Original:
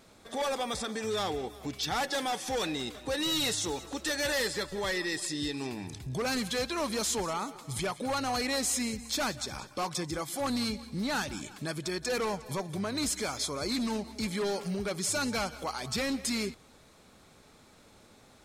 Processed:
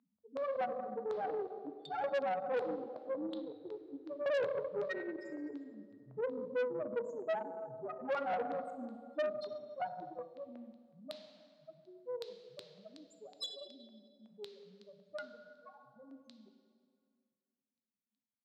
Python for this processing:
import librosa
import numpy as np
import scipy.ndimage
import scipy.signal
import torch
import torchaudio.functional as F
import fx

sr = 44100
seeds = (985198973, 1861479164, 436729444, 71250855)

y = fx.octave_divider(x, sr, octaves=2, level_db=-3.0)
y = fx.low_shelf(y, sr, hz=380.0, db=7.5)
y = fx.spec_topn(y, sr, count=1)
y = fx.rider(y, sr, range_db=4, speed_s=2.0)
y = fx.filter_lfo_lowpass(y, sr, shape='square', hz=2.7, low_hz=600.0, high_hz=4100.0, q=4.3)
y = fx.low_shelf(y, sr, hz=180.0, db=-10.0)
y = fx.rev_plate(y, sr, seeds[0], rt60_s=2.2, hf_ratio=0.65, predelay_ms=0, drr_db=5.5)
y = fx.filter_sweep_bandpass(y, sr, from_hz=1200.0, to_hz=4400.0, start_s=9.57, end_s=11.21, q=1.2)
y = fx.tube_stage(y, sr, drive_db=38.0, bias=0.55)
y = scipy.signal.sosfilt(scipy.signal.butter(4, 120.0, 'highpass', fs=sr, output='sos'), y)
y = fx.doppler_dist(y, sr, depth_ms=0.11)
y = y * librosa.db_to_amplitude(8.0)